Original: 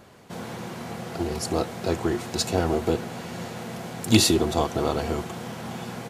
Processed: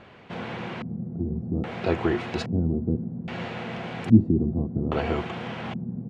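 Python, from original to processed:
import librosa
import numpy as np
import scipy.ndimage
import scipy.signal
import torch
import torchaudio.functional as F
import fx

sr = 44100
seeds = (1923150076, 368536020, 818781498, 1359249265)

y = fx.dynamic_eq(x, sr, hz=4200.0, q=0.88, threshold_db=-40.0, ratio=4.0, max_db=-6)
y = fx.filter_lfo_lowpass(y, sr, shape='square', hz=0.61, low_hz=210.0, high_hz=2700.0, q=1.8)
y = y * librosa.db_to_amplitude(1.0)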